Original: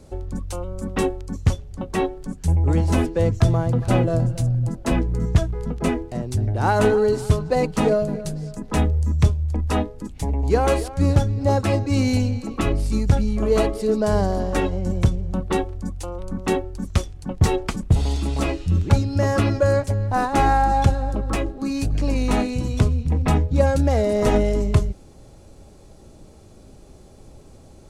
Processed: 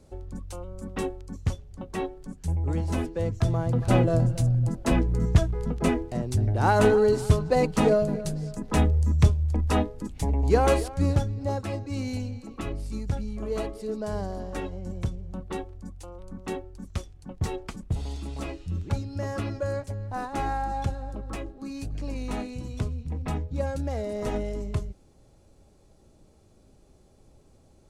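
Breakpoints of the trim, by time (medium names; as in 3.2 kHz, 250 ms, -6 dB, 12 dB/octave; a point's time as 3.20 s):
3.34 s -8.5 dB
3.94 s -2 dB
10.72 s -2 dB
11.69 s -11.5 dB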